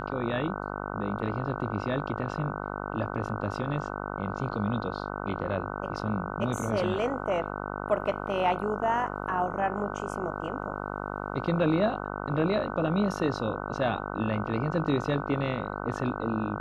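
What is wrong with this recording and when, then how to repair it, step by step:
buzz 50 Hz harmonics 30 -35 dBFS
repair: de-hum 50 Hz, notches 30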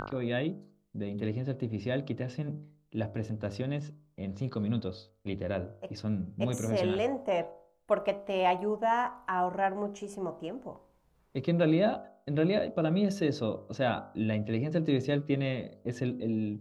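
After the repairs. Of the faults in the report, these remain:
none

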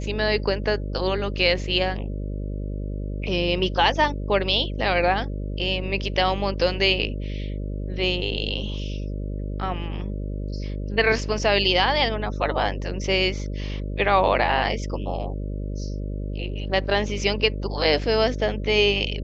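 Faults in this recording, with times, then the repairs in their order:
buzz 50 Hz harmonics 12 -29 dBFS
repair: de-hum 50 Hz, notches 12

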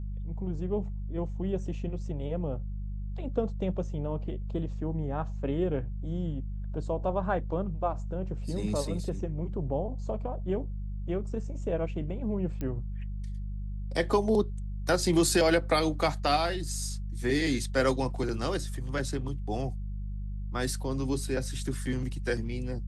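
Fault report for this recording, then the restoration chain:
hum 50 Hz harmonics 4 -35 dBFS
12.61 pop -22 dBFS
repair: de-click; de-hum 50 Hz, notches 4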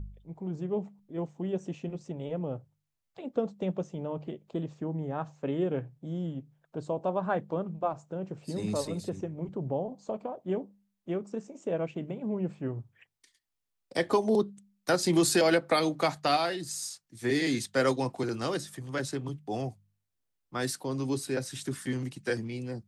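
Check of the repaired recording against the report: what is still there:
none

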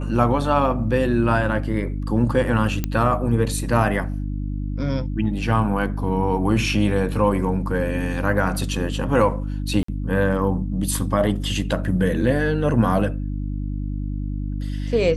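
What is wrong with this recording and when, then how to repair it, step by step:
hum 50 Hz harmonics 6 -26 dBFS
2.84 pop -9 dBFS
9.83–9.88 gap 54 ms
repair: de-click; de-hum 50 Hz, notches 6; interpolate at 9.83, 54 ms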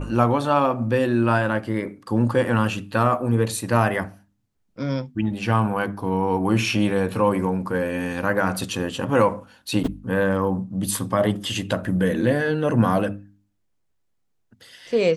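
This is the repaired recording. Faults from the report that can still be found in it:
none

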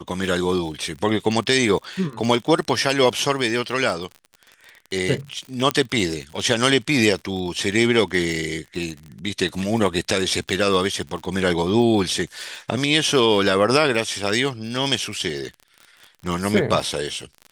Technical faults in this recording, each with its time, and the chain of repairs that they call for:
crackle 49/s -30 dBFS
5.71 pop -5 dBFS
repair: de-click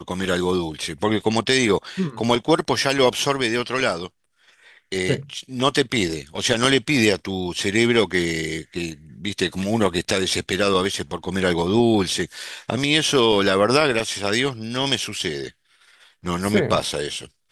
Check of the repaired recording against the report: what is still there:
none

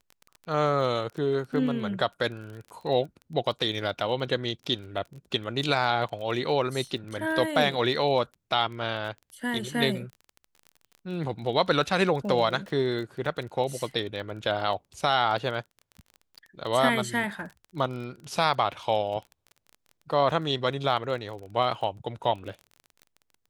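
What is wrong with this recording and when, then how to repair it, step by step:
crackle 23/s -36 dBFS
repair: de-click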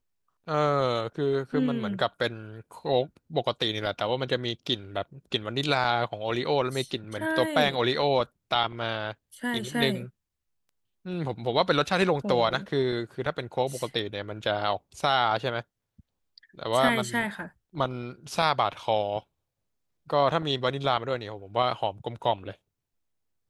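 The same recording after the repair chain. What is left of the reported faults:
none

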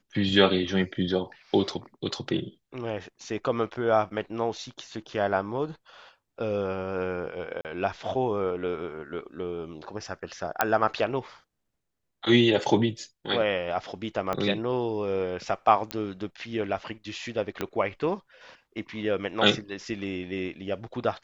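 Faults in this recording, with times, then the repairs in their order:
7.61–7.65 gap 38 ms
10.61 pop -6 dBFS
14.33 pop -15 dBFS
15.91 pop -14 dBFS
17.61 pop -14 dBFS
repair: de-click; interpolate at 7.61, 38 ms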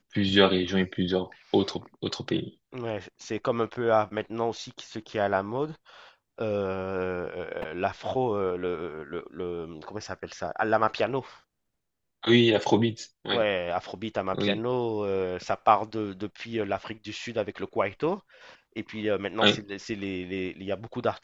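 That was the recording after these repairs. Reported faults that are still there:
14.33 pop
17.61 pop

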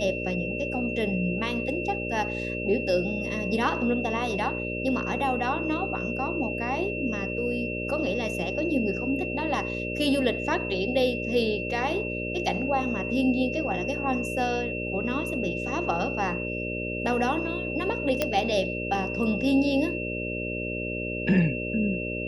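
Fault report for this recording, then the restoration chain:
buzz 60 Hz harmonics 10 -33 dBFS
tone 2700 Hz -33 dBFS
18.22 pop -9 dBFS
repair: de-click; de-hum 60 Hz, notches 10; notch 2700 Hz, Q 30

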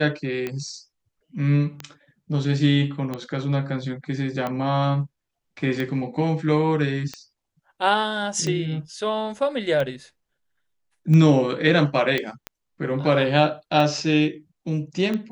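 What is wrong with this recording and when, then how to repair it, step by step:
tick 45 rpm -15 dBFS
12.18 pop -11 dBFS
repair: de-click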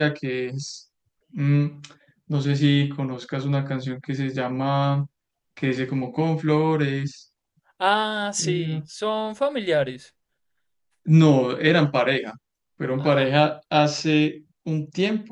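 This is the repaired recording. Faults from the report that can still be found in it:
none

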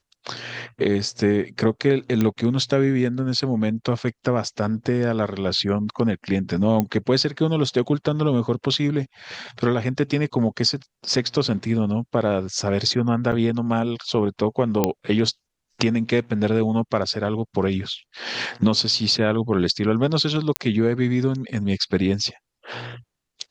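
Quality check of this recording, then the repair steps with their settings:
2.21 pop -10 dBFS
6.8 pop -8 dBFS
13.32–13.33 gap 6 ms
14.84 pop -4 dBFS
20.56 pop -5 dBFS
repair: de-click; interpolate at 13.32, 6 ms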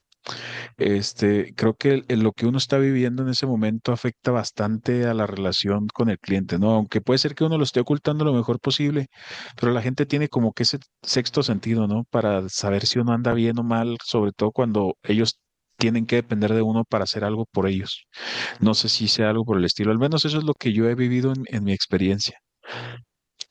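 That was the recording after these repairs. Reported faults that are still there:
none

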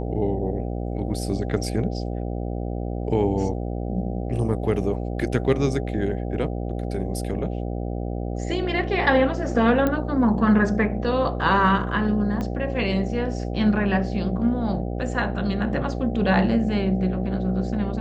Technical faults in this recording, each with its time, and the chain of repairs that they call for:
buzz 60 Hz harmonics 13 -28 dBFS
9.87 pop -11 dBFS
12.41 pop -17 dBFS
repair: de-click; de-hum 60 Hz, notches 13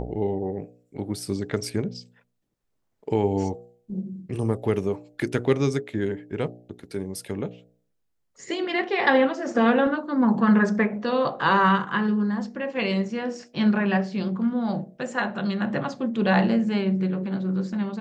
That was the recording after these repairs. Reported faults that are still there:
12.41 pop

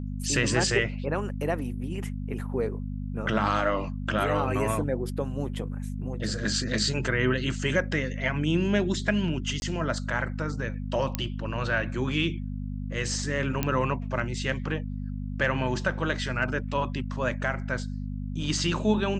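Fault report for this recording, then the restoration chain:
hum 50 Hz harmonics 5 -33 dBFS
9.6–9.62 gap 21 ms
11.15 pop -11 dBFS
13.63 pop -10 dBFS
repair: de-click; de-hum 50 Hz, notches 5; interpolate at 9.6, 21 ms

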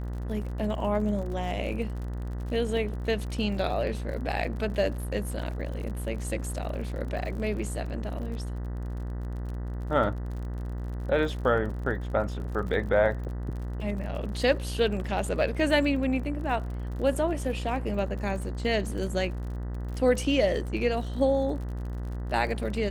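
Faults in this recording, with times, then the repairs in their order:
buzz 60 Hz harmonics 33 -33 dBFS
crackle 47/s -37 dBFS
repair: de-click; de-hum 60 Hz, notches 33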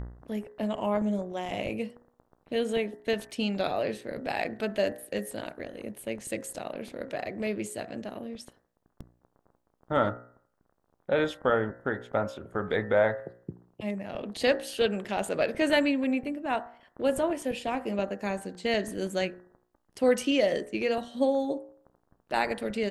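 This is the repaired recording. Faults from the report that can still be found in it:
none

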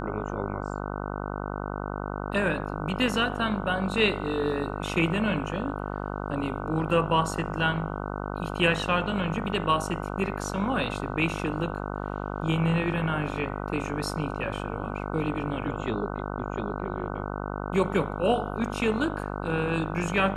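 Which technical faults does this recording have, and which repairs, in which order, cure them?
buzz 50 Hz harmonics 30 -33 dBFS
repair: de-hum 50 Hz, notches 30

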